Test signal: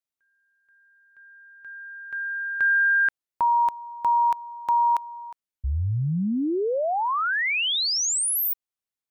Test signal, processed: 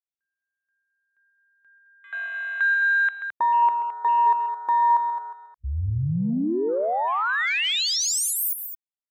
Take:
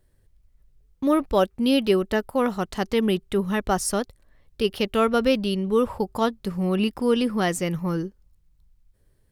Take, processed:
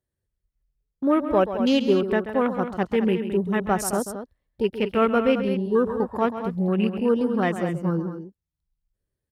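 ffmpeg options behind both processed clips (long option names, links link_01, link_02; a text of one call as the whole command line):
ffmpeg -i in.wav -af "afwtdn=0.0251,highpass=67,aecho=1:1:134.1|215.7:0.282|0.316" out.wav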